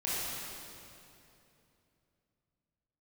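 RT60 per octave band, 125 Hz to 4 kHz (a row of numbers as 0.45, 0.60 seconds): 3.8, 3.4, 3.1, 2.7, 2.5, 2.3 seconds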